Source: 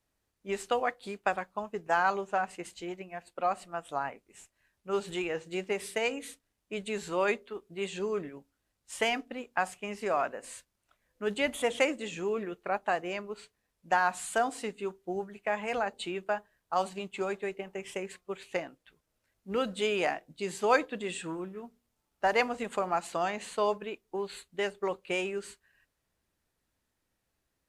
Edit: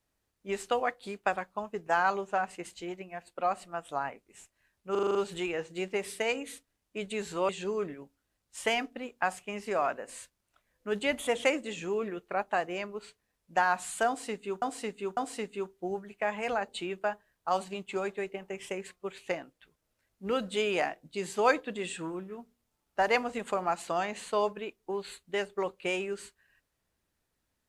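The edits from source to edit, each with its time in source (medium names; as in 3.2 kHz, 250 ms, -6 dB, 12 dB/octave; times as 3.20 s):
4.91 s: stutter 0.04 s, 7 plays
7.25–7.84 s: delete
14.42–14.97 s: loop, 3 plays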